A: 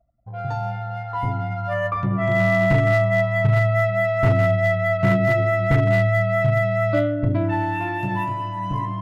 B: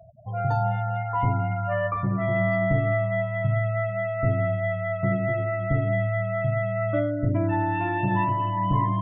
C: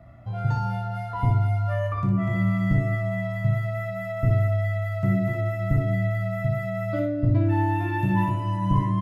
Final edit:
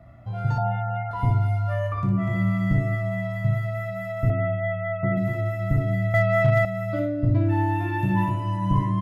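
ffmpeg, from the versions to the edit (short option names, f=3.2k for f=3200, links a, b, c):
-filter_complex "[1:a]asplit=2[a][b];[2:a]asplit=4[c][d][e][f];[c]atrim=end=0.582[g];[a]atrim=start=0.578:end=1.112[h];[d]atrim=start=1.108:end=4.302[i];[b]atrim=start=4.298:end=5.172[j];[e]atrim=start=5.168:end=6.142[k];[0:a]atrim=start=6.138:end=6.652[l];[f]atrim=start=6.648[m];[g][h]acrossfade=d=0.004:c1=hsin:c2=hsin[n];[n][i]acrossfade=d=0.004:c1=hsin:c2=hsin[o];[o][j]acrossfade=d=0.004:c1=hsin:c2=hsin[p];[p][k]acrossfade=d=0.004:c1=hsin:c2=hsin[q];[q][l]acrossfade=d=0.004:c1=hsin:c2=hsin[r];[r][m]acrossfade=d=0.004:c1=hsin:c2=hsin"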